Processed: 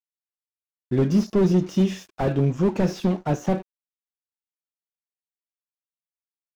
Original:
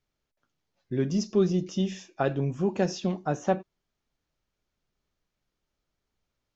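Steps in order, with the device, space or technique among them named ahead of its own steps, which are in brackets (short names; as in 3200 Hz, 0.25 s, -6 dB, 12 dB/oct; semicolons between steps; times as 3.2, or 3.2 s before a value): early transistor amplifier (crossover distortion -52 dBFS; slew limiter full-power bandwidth 22 Hz); gain +8 dB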